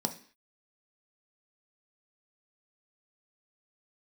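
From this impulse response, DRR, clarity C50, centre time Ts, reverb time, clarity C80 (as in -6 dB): 5.5 dB, 13.5 dB, 8 ms, 0.45 s, 18.0 dB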